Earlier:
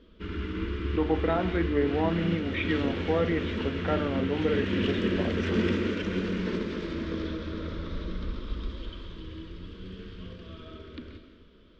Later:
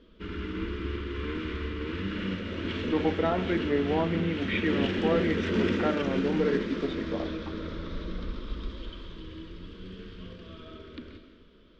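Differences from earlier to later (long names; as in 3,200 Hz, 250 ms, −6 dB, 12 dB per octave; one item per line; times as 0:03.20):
speech: entry +1.95 s
master: add parametric band 78 Hz −4 dB 1.4 octaves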